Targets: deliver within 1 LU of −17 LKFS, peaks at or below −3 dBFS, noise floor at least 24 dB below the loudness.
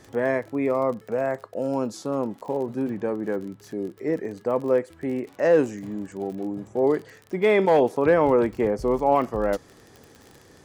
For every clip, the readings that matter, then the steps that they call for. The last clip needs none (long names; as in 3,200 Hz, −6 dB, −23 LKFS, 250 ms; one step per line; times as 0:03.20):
crackle rate 34 per second; integrated loudness −24.5 LKFS; sample peak −8.5 dBFS; target loudness −17.0 LKFS
→ click removal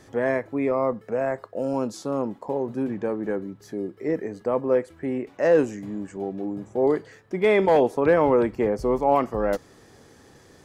crackle rate 0 per second; integrated loudness −24.5 LKFS; sample peak −8.5 dBFS; target loudness −17.0 LKFS
→ level +7.5 dB
brickwall limiter −3 dBFS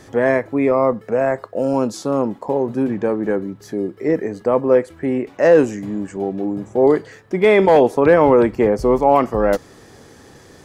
integrated loudness −17.5 LKFS; sample peak −3.0 dBFS; background noise floor −45 dBFS